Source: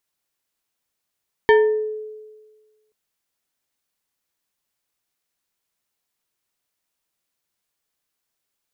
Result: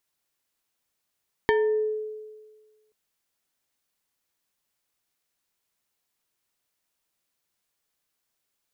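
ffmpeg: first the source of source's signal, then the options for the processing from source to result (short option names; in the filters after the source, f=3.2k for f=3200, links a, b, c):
-f lavfi -i "aevalsrc='0.398*pow(10,-3*t/1.45)*sin(2*PI*430*t+1*pow(10,-3*t/0.63)*sin(2*PI*3.15*430*t))':d=1.43:s=44100"
-af "acompressor=threshold=-21dB:ratio=6"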